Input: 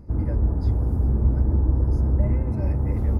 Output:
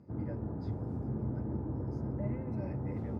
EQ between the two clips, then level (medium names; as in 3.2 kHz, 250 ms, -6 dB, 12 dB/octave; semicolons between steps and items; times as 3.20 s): high-pass 110 Hz 24 dB/octave; distance through air 86 m; band-stop 1.1 kHz, Q 20; -7.5 dB